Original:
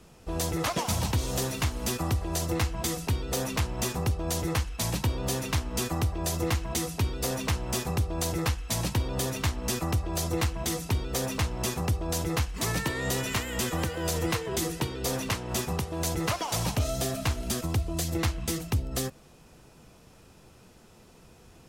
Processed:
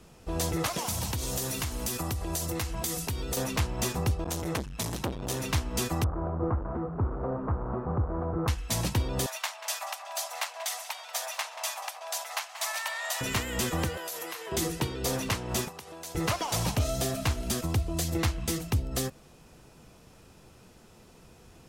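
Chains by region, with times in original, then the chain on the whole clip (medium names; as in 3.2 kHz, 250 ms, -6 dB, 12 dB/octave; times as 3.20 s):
0.66–3.37 s: treble shelf 6.3 kHz +10 dB + compression 4:1, threshold -28 dBFS
4.24–5.40 s: band-stop 4.6 kHz, Q 19 + transformer saturation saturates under 660 Hz
6.04–8.48 s: one-bit delta coder 64 kbps, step -28 dBFS + Chebyshev low-pass 1.3 kHz, order 4
9.26–13.21 s: Chebyshev high-pass 610 Hz, order 6 + tape echo 185 ms, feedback 69%, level -11.5 dB, low-pass 4.8 kHz
13.97–14.52 s: high-pass 630 Hz + compression 10:1, threshold -34 dBFS + peaking EQ 12 kHz +11.5 dB 0.27 oct
15.68–16.15 s: compression 12:1, threshold -33 dBFS + high-pass 660 Hz 6 dB/octave
whole clip: none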